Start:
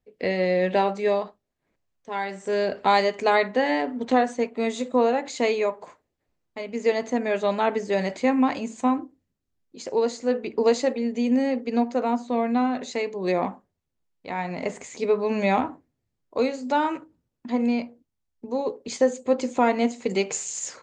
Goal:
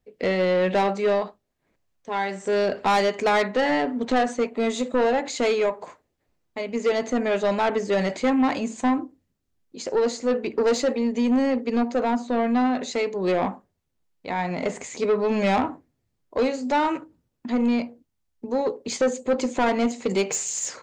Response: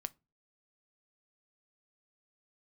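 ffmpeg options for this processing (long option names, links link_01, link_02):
-af "asoftclip=type=tanh:threshold=-19.5dB,volume=4dB"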